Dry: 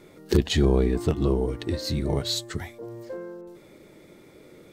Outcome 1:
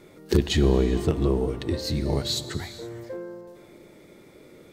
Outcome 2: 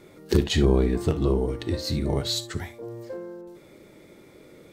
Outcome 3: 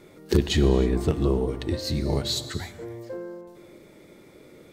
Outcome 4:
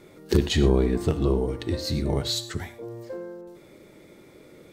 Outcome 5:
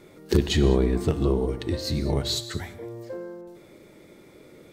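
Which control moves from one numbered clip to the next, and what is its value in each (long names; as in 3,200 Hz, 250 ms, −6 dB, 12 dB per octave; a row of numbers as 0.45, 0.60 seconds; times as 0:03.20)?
reverb whose tail is shaped and stops, gate: 500, 90, 340, 140, 230 milliseconds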